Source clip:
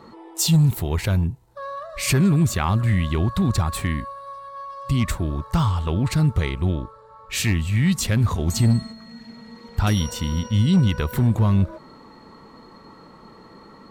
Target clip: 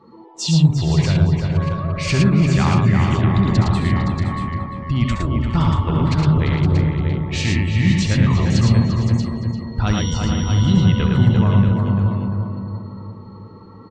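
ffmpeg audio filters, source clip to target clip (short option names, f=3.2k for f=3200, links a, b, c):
-filter_complex "[0:a]asplit=2[a][b];[b]adelay=345,lowpass=f=2.8k:p=1,volume=-4dB,asplit=2[c][d];[d]adelay=345,lowpass=f=2.8k:p=1,volume=0.52,asplit=2[e][f];[f]adelay=345,lowpass=f=2.8k:p=1,volume=0.52,asplit=2[g][h];[h]adelay=345,lowpass=f=2.8k:p=1,volume=0.52,asplit=2[i][j];[j]adelay=345,lowpass=f=2.8k:p=1,volume=0.52,asplit=2[k][l];[l]adelay=345,lowpass=f=2.8k:p=1,volume=0.52,asplit=2[m][n];[n]adelay=345,lowpass=f=2.8k:p=1,volume=0.52[o];[c][e][g][i][k][m][o]amix=inputs=7:normalize=0[p];[a][p]amix=inputs=2:normalize=0,afftdn=nr=13:nf=-40,lowpass=f=6k:w=0.5412,lowpass=f=6k:w=1.3066,asplit=2[q][r];[r]aecho=0:1:67|80|111|516|633|670:0.376|0.266|0.708|0.299|0.398|0.141[s];[q][s]amix=inputs=2:normalize=0"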